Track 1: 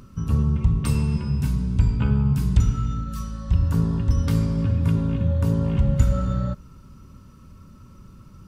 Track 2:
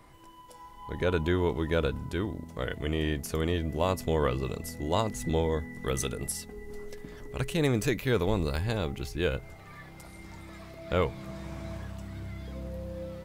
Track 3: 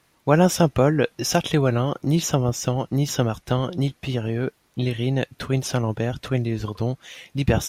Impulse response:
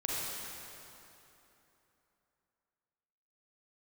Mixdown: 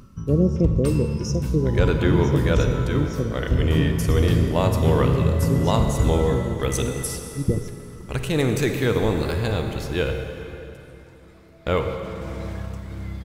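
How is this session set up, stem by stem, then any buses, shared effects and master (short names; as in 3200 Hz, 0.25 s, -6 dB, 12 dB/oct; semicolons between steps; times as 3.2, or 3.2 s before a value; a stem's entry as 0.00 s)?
-1.0 dB, 0.00 s, send -22 dB, AGC gain up to 6 dB; auto duck -7 dB, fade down 0.25 s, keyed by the third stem
+1.5 dB, 0.75 s, send -6.5 dB, gate -39 dBFS, range -13 dB
-1.0 dB, 0.00 s, send -15.5 dB, elliptic band-stop 460–5400 Hz; treble ducked by the level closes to 2400 Hz, closed at -16.5 dBFS; upward expander 1.5:1, over -33 dBFS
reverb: on, RT60 3.2 s, pre-delay 33 ms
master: dry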